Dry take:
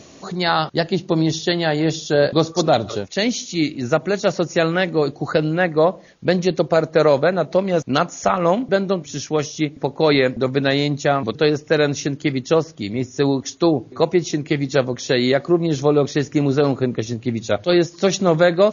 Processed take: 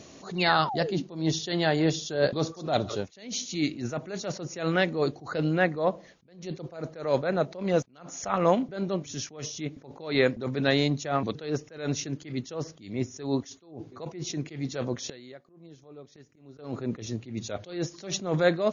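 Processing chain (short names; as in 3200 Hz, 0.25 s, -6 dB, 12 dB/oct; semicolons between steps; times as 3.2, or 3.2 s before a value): 0.38–1.03 painted sound fall 250–2900 Hz -27 dBFS; 15.09–16.59 flipped gate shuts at -17 dBFS, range -24 dB; attack slew limiter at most 120 dB/s; gain -5 dB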